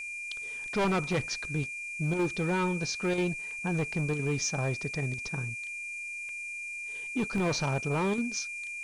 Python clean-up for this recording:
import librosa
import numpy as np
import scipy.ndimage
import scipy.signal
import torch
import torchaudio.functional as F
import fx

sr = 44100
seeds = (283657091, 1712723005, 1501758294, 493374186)

y = fx.fix_declip(x, sr, threshold_db=-23.0)
y = fx.notch(y, sr, hz=2400.0, q=30.0)
y = fx.fix_interpolate(y, sr, at_s=(3.51, 6.29, 7.38), length_ms=1.9)
y = fx.noise_reduce(y, sr, print_start_s=5.89, print_end_s=6.39, reduce_db=30.0)